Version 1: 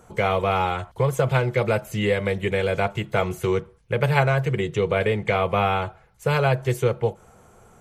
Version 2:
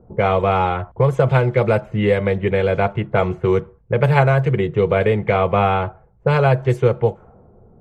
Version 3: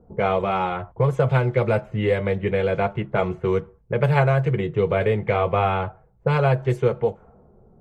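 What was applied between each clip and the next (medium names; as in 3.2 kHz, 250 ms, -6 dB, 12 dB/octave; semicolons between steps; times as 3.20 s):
treble shelf 2.3 kHz -10 dB; level-controlled noise filter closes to 430 Hz, open at -16.5 dBFS; trim +6 dB
flange 0.28 Hz, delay 4.1 ms, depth 3.9 ms, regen -62%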